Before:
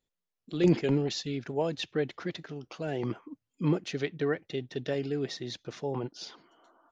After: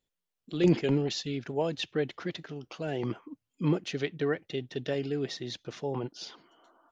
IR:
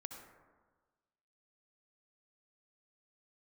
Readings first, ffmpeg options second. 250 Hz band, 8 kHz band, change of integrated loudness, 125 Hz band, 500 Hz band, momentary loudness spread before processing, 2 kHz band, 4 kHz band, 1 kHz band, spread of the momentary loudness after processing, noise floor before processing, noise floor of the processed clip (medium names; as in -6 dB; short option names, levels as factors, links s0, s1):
0.0 dB, no reading, 0.0 dB, 0.0 dB, 0.0 dB, 13 LU, +0.5 dB, +1.0 dB, 0.0 dB, 13 LU, under -85 dBFS, under -85 dBFS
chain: -af "equalizer=f=3000:w=3.7:g=3"